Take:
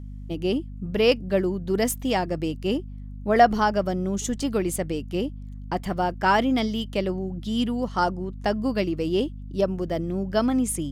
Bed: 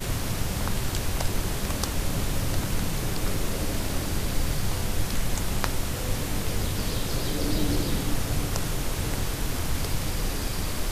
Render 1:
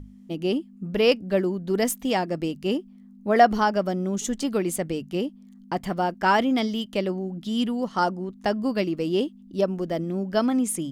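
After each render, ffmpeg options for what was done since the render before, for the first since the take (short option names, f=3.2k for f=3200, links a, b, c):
-af "bandreject=f=50:t=h:w=6,bandreject=f=100:t=h:w=6,bandreject=f=150:t=h:w=6"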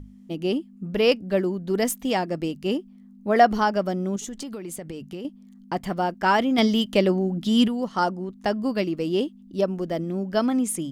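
-filter_complex "[0:a]asettb=1/sr,asplit=3[a][b][c];[a]atrim=end=4.164[d];[b]atrim=start=4.16:end=5.25,asetpts=PTS-STARTPTS,afade=t=in:d=0.004:c=qsin,afade=t=out:st=1.086:d=0.004:c=qsin,acompressor=threshold=-30dB:ratio=16:attack=3.2:release=140:knee=1:detection=peak[e];[c]atrim=start=5.246[f];[d][e]acrossfade=d=0.004:c1=hsin:c2=qsin[g];[g][f]acrossfade=d=0.004:c1=qsin:c2=hsin,asettb=1/sr,asplit=3[h][i][j];[h]atrim=end=6.584[k];[i]atrim=start=6.58:end=7.68,asetpts=PTS-STARTPTS,afade=t=in:d=0.004:c=qsin,afade=t=out:st=1.096:d=0.004:c=qsin,acontrast=63[l];[j]atrim=start=7.676[m];[k][l]acrossfade=d=0.004:c1=hsin:c2=qsin[n];[n][m]acrossfade=d=0.004:c1=qsin:c2=hsin"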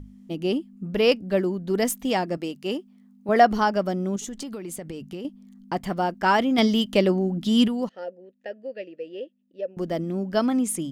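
-filter_complex "[0:a]asettb=1/sr,asplit=3[a][b][c];[a]atrim=end=2.374[d];[b]atrim=start=2.37:end=3.29,asetpts=PTS-STARTPTS,afade=t=in:d=0.004:c=qsin,afade=t=out:st=0.916:d=0.004:c=qsin,highpass=f=340:p=1[e];[c]atrim=start=3.286[f];[d][e]acrossfade=d=0.004:c1=hsin:c2=qsin[g];[g][f]acrossfade=d=0.004:c1=qsin:c2=hsin,asettb=1/sr,asplit=3[h][i][j];[h]atrim=end=7.894[k];[i]atrim=start=7.89:end=9.77,asetpts=PTS-STARTPTS,afade=t=in:d=0.004:c=qsin,afade=t=out:st=1.876:d=0.004:c=qsin,asplit=3[l][m][n];[l]bandpass=f=530:t=q:w=8,volume=0dB[o];[m]bandpass=f=1.84k:t=q:w=8,volume=-6dB[p];[n]bandpass=f=2.48k:t=q:w=8,volume=-9dB[q];[o][p][q]amix=inputs=3:normalize=0[r];[j]atrim=start=9.766[s];[k][r]acrossfade=d=0.004:c1=hsin:c2=qsin[t];[t][s]acrossfade=d=0.004:c1=qsin:c2=hsin"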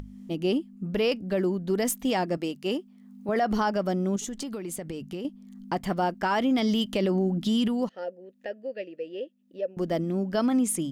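-af "alimiter=limit=-17dB:level=0:latency=1:release=50,acompressor=mode=upward:threshold=-37dB:ratio=2.5"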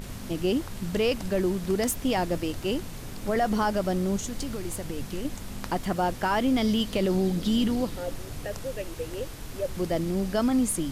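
-filter_complex "[1:a]volume=-11dB[a];[0:a][a]amix=inputs=2:normalize=0"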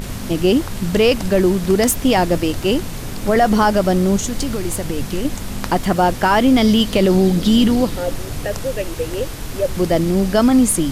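-af "volume=11dB"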